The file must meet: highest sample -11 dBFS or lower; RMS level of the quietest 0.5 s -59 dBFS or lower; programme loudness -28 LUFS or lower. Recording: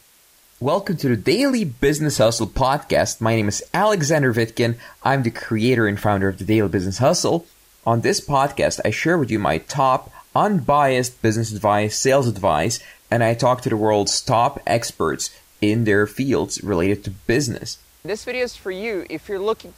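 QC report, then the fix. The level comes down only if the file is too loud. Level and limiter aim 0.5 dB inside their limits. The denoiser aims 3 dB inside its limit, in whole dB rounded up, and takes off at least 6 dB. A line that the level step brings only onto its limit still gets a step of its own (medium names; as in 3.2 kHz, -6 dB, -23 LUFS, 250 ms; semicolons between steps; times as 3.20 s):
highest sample -6.0 dBFS: fail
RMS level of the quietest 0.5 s -54 dBFS: fail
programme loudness -20.0 LUFS: fail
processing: trim -8.5 dB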